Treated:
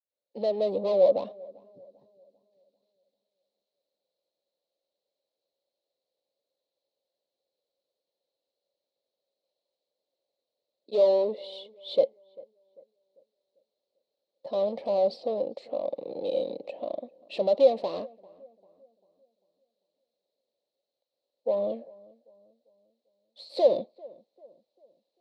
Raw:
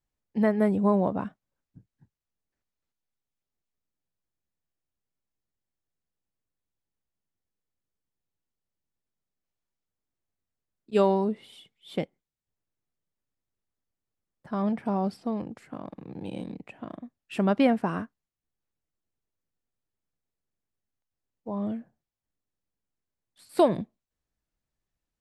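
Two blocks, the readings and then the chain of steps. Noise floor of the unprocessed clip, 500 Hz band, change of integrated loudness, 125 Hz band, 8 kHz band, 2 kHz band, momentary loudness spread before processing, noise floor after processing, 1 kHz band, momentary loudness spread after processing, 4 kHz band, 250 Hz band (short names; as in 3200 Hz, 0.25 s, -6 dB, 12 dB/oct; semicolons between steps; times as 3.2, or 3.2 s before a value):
under -85 dBFS, +5.0 dB, 0.0 dB, under -15 dB, n/a, under -10 dB, 18 LU, under -85 dBFS, -5.0 dB, 17 LU, +3.5 dB, -13.5 dB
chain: opening faded in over 0.74 s; overdrive pedal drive 29 dB, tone 1100 Hz, clips at -10 dBFS; double band-pass 1500 Hz, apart 2.9 oct; on a send: darkening echo 0.395 s, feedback 44%, low-pass 1300 Hz, level -23 dB; on the sum: gain +4.5 dB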